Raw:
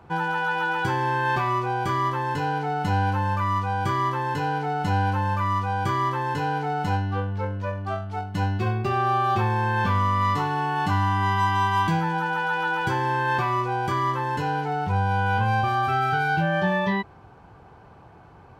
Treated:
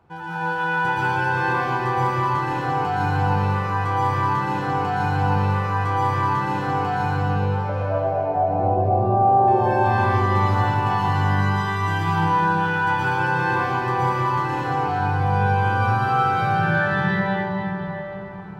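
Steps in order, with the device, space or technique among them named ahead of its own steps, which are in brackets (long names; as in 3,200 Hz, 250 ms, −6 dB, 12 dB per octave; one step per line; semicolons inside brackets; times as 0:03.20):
0:07.69–0:09.48: drawn EQ curve 240 Hz 0 dB, 650 Hz +14 dB, 1,700 Hz −22 dB
cathedral (convolution reverb RT60 4.8 s, pre-delay 110 ms, DRR −11 dB)
level −9 dB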